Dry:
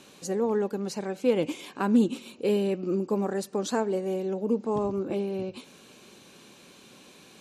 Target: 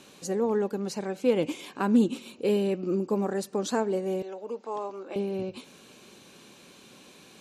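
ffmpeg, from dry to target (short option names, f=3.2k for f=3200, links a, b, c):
-filter_complex "[0:a]asettb=1/sr,asplit=3[a][b][c];[a]atrim=end=4.224[d];[b]atrim=start=4.22:end=5.16,asetpts=PTS-STARTPTS,afade=t=in:d=0.004:c=qsin,afade=t=out:st=0.936:d=0.004:c=qsin,highpass=630,lowpass=7.1k[e];[c]atrim=start=5.156[f];[d][e]acrossfade=d=0.004:c1=hsin:c2=qsin[g];[g][f]acrossfade=d=0.004:c1=qsin:c2=hsin"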